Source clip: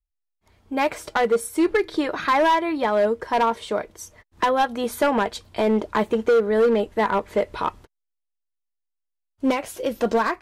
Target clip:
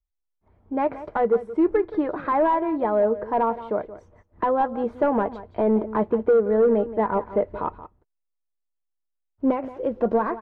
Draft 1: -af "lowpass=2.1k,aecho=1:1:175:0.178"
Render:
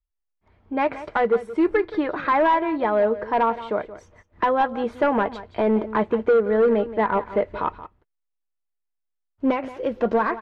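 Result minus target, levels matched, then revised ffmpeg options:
2000 Hz band +7.0 dB
-af "lowpass=990,aecho=1:1:175:0.178"

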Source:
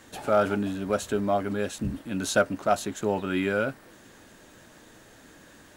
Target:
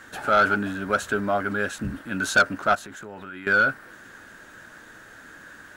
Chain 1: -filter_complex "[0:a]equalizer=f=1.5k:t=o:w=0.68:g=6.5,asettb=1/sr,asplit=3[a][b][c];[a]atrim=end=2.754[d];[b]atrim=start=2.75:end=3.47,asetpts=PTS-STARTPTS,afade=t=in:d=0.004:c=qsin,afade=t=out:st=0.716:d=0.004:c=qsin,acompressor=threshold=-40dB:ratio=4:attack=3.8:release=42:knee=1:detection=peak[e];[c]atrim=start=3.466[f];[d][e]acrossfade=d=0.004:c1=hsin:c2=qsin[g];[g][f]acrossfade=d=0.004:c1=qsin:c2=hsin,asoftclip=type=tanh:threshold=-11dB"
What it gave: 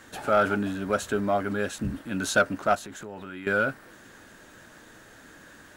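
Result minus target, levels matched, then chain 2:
2000 Hz band -3.5 dB
-filter_complex "[0:a]equalizer=f=1.5k:t=o:w=0.68:g=15,asettb=1/sr,asplit=3[a][b][c];[a]atrim=end=2.754[d];[b]atrim=start=2.75:end=3.47,asetpts=PTS-STARTPTS,afade=t=in:d=0.004:c=qsin,afade=t=out:st=0.716:d=0.004:c=qsin,acompressor=threshold=-40dB:ratio=4:attack=3.8:release=42:knee=1:detection=peak[e];[c]atrim=start=3.466[f];[d][e]acrossfade=d=0.004:c1=hsin:c2=qsin[g];[g][f]acrossfade=d=0.004:c1=qsin:c2=hsin,asoftclip=type=tanh:threshold=-11dB"

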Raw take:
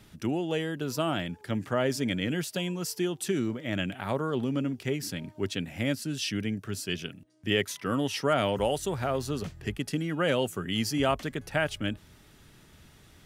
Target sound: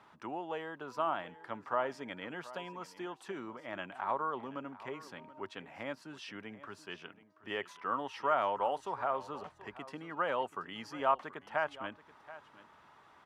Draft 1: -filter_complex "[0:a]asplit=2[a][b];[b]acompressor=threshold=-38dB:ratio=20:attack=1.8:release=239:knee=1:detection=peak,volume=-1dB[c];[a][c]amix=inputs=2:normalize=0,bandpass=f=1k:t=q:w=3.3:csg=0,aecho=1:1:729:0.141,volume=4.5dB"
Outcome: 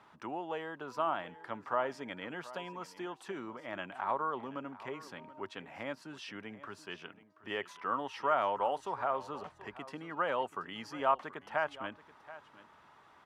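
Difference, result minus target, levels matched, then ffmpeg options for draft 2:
compressor: peak gain reduction -7 dB
-filter_complex "[0:a]asplit=2[a][b];[b]acompressor=threshold=-45.5dB:ratio=20:attack=1.8:release=239:knee=1:detection=peak,volume=-1dB[c];[a][c]amix=inputs=2:normalize=0,bandpass=f=1k:t=q:w=3.3:csg=0,aecho=1:1:729:0.141,volume=4.5dB"

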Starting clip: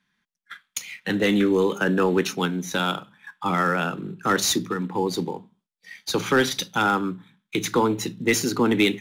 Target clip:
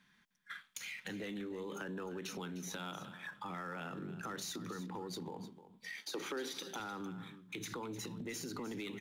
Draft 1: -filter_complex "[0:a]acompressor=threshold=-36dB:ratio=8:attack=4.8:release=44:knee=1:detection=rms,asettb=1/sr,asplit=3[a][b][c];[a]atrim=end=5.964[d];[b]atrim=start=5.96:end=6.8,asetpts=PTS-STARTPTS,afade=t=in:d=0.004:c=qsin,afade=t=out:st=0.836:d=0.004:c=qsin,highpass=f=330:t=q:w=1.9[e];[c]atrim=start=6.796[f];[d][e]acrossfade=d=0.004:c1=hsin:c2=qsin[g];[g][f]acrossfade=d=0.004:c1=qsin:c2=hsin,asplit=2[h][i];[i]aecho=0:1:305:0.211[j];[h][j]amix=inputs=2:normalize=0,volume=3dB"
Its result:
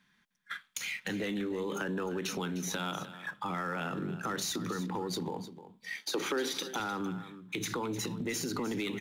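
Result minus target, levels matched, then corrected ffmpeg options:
compressor: peak gain reduction -8.5 dB
-filter_complex "[0:a]acompressor=threshold=-45.5dB:ratio=8:attack=4.8:release=44:knee=1:detection=rms,asettb=1/sr,asplit=3[a][b][c];[a]atrim=end=5.964[d];[b]atrim=start=5.96:end=6.8,asetpts=PTS-STARTPTS,afade=t=in:d=0.004:c=qsin,afade=t=out:st=0.836:d=0.004:c=qsin,highpass=f=330:t=q:w=1.9[e];[c]atrim=start=6.796[f];[d][e]acrossfade=d=0.004:c1=hsin:c2=qsin[g];[g][f]acrossfade=d=0.004:c1=qsin:c2=hsin,asplit=2[h][i];[i]aecho=0:1:305:0.211[j];[h][j]amix=inputs=2:normalize=0,volume=3dB"

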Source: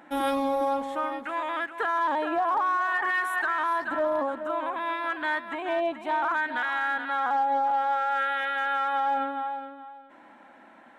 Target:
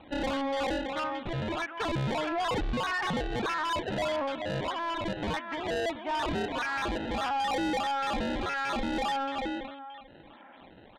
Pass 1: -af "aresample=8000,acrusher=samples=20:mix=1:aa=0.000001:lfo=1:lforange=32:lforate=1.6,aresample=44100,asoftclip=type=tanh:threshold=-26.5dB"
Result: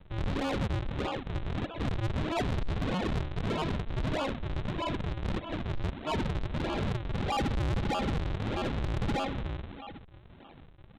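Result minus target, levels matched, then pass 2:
decimation with a swept rate: distortion +17 dB
-af "aresample=8000,acrusher=samples=4:mix=1:aa=0.000001:lfo=1:lforange=6.4:lforate=1.6,aresample=44100,asoftclip=type=tanh:threshold=-26.5dB"

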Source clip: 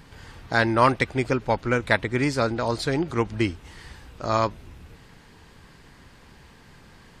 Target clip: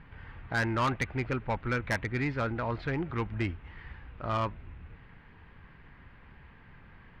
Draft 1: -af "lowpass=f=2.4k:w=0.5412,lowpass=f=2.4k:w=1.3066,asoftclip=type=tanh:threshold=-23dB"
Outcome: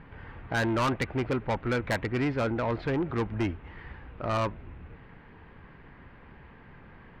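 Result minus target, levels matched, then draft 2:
500 Hz band +2.5 dB
-af "lowpass=f=2.4k:w=0.5412,lowpass=f=2.4k:w=1.3066,equalizer=f=430:w=0.46:g=-8,asoftclip=type=tanh:threshold=-23dB"

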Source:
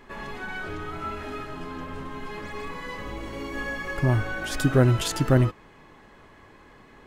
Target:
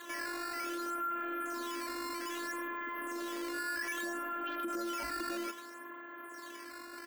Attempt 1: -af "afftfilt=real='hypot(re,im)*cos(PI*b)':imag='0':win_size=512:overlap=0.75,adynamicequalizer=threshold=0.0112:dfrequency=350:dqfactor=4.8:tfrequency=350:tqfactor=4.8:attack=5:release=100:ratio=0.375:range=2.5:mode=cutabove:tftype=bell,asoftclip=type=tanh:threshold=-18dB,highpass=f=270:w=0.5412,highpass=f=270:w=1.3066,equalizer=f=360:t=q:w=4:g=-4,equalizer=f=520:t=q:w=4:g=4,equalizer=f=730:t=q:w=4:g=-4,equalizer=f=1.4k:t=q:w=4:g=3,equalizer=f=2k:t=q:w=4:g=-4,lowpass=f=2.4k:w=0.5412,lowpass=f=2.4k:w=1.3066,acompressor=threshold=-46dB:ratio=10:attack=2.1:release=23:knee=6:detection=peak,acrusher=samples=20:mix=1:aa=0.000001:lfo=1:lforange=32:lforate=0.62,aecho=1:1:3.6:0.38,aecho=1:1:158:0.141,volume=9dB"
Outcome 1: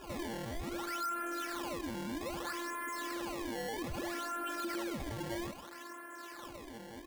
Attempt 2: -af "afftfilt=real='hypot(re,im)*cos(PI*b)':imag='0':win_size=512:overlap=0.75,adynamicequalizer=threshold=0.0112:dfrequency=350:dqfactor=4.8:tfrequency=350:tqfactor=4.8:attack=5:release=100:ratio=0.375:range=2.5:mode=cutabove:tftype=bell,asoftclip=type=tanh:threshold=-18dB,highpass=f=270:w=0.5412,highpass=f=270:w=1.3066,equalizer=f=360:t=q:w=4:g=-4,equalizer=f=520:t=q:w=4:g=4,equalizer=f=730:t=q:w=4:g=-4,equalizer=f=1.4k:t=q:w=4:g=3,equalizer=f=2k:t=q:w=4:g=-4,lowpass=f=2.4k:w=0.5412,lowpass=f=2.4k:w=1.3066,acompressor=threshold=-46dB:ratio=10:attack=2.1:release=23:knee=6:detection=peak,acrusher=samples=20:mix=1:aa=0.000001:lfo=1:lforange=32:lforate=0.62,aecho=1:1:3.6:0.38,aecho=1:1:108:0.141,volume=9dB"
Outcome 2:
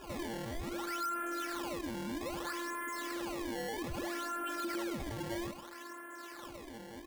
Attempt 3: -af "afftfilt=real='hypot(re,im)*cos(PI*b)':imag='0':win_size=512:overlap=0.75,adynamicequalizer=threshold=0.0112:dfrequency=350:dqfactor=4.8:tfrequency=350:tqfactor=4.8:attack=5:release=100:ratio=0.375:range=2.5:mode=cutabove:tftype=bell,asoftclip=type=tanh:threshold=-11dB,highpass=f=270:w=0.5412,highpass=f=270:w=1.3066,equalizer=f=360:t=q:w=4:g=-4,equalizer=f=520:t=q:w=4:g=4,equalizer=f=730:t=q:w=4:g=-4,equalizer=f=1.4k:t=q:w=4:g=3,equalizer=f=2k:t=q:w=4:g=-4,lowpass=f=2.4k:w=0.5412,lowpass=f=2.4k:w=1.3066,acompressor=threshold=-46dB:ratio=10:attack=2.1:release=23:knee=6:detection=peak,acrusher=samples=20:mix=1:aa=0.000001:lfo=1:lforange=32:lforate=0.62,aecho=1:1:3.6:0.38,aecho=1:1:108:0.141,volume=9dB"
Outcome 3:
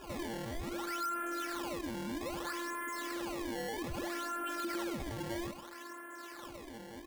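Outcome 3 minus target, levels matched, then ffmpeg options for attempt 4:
decimation with a swept rate: distortion +7 dB
-af "afftfilt=real='hypot(re,im)*cos(PI*b)':imag='0':win_size=512:overlap=0.75,adynamicequalizer=threshold=0.0112:dfrequency=350:dqfactor=4.8:tfrequency=350:tqfactor=4.8:attack=5:release=100:ratio=0.375:range=2.5:mode=cutabove:tftype=bell,asoftclip=type=tanh:threshold=-11dB,highpass=f=270:w=0.5412,highpass=f=270:w=1.3066,equalizer=f=360:t=q:w=4:g=-4,equalizer=f=520:t=q:w=4:g=4,equalizer=f=730:t=q:w=4:g=-4,equalizer=f=1.4k:t=q:w=4:g=3,equalizer=f=2k:t=q:w=4:g=-4,lowpass=f=2.4k:w=0.5412,lowpass=f=2.4k:w=1.3066,acompressor=threshold=-46dB:ratio=10:attack=2.1:release=23:knee=6:detection=peak,acrusher=samples=8:mix=1:aa=0.000001:lfo=1:lforange=12.8:lforate=0.62,aecho=1:1:3.6:0.38,aecho=1:1:108:0.141,volume=9dB"

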